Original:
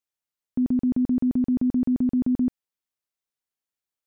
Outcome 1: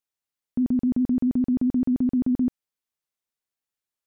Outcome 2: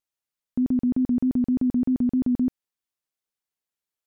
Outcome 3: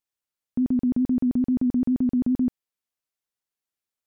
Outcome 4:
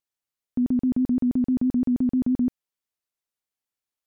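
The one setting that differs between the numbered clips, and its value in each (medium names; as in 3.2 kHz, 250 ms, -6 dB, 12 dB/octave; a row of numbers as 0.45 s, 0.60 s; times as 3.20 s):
vibrato, rate: 15 Hz, 3.3 Hz, 10 Hz, 6.1 Hz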